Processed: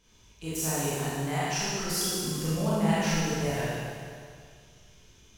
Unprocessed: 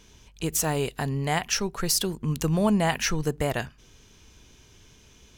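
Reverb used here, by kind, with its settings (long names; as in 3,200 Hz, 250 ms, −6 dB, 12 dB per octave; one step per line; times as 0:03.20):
four-comb reverb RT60 2.1 s, combs from 25 ms, DRR −10 dB
level −13 dB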